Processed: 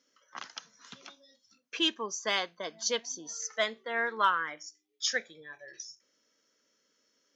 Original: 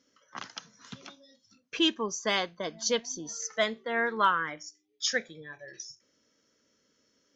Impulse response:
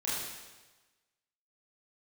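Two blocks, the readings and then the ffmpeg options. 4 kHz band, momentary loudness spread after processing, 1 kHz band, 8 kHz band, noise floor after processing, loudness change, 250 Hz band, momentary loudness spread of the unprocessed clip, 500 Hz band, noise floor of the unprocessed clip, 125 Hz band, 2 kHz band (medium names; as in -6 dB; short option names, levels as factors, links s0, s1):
-1.0 dB, 20 LU, -1.5 dB, no reading, -75 dBFS, -1.5 dB, -7.0 dB, 20 LU, -4.0 dB, -72 dBFS, under -10 dB, -1.5 dB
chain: -af "highpass=f=510:p=1,aeval=exprs='0.251*(cos(1*acos(clip(val(0)/0.251,-1,1)))-cos(1*PI/2))+0.01*(cos(3*acos(clip(val(0)/0.251,-1,1)))-cos(3*PI/2))':c=same"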